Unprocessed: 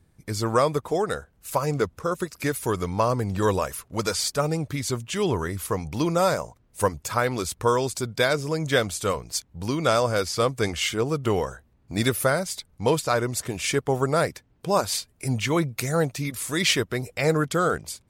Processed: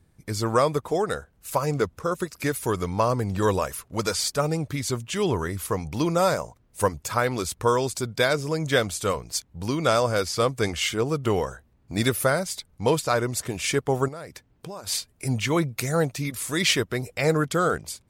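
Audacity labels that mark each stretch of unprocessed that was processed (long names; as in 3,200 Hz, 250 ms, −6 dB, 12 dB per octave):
14.080000	14.870000	downward compressor 8 to 1, threshold −34 dBFS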